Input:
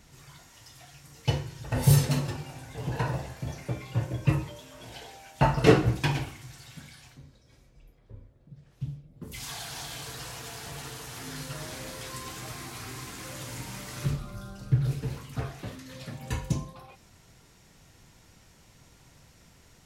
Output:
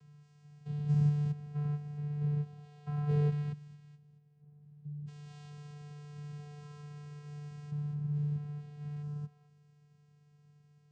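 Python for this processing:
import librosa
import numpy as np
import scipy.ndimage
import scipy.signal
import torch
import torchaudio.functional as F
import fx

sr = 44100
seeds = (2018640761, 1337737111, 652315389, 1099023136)

y = fx.spec_steps(x, sr, hold_ms=400)
y = fx.vocoder(y, sr, bands=8, carrier='square', carrier_hz=147.0)
y = fx.stretch_grains(y, sr, factor=0.55, grain_ms=133.0)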